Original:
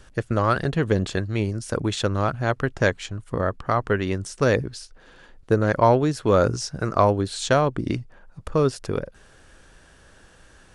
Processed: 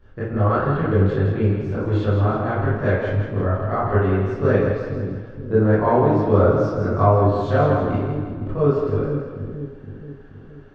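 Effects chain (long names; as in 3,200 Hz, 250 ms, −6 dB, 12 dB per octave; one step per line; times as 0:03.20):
head-to-tape spacing loss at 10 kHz 38 dB
echo with a time of its own for lows and highs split 360 Hz, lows 473 ms, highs 163 ms, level −6 dB
convolution reverb RT60 0.80 s, pre-delay 18 ms, DRR −11 dB
level −8 dB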